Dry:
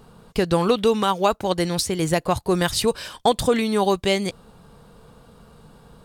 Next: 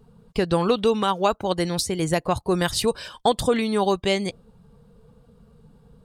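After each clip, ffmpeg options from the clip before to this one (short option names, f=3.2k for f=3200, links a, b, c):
-af "afftdn=nr=12:nf=-42,volume=-1.5dB"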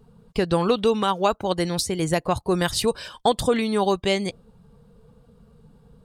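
-af anull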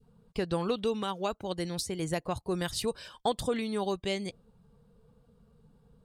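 -af "adynamicequalizer=threshold=0.0224:dfrequency=990:dqfactor=0.87:tfrequency=990:tqfactor=0.87:attack=5:release=100:ratio=0.375:range=2.5:mode=cutabove:tftype=bell,volume=-9dB"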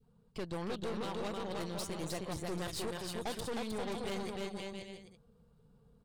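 -af "aecho=1:1:310|527|678.9|785.2|859.7:0.631|0.398|0.251|0.158|0.1,aeval=exprs='(tanh(44.7*val(0)+0.7)-tanh(0.7))/44.7':c=same,volume=-2dB"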